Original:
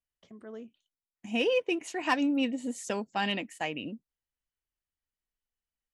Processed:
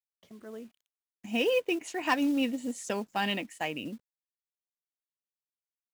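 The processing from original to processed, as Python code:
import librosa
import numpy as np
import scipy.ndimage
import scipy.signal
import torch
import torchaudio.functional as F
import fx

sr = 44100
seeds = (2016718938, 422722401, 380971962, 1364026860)

y = fx.quant_companded(x, sr, bits=6)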